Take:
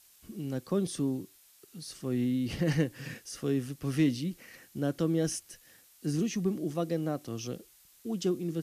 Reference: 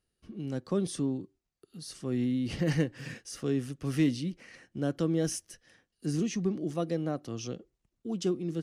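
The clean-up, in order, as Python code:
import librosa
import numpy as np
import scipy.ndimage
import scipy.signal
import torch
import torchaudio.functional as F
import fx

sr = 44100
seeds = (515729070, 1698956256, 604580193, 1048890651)

y = fx.noise_reduce(x, sr, print_start_s=1.25, print_end_s=1.75, reduce_db=19.0)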